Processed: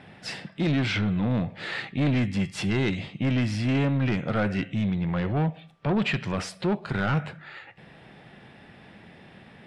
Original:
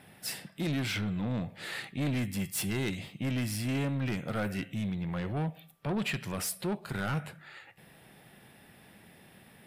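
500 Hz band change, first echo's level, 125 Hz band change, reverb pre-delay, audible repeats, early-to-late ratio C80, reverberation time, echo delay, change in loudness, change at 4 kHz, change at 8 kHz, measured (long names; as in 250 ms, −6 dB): +7.5 dB, no echo audible, +7.5 dB, no reverb audible, no echo audible, no reverb audible, no reverb audible, no echo audible, +7.0 dB, +4.5 dB, −6.0 dB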